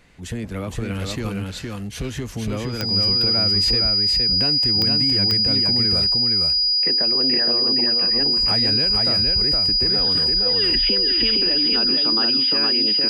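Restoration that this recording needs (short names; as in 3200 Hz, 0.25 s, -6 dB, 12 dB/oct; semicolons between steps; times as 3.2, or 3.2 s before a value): de-click; notch 4900 Hz, Q 30; inverse comb 0.465 s -3 dB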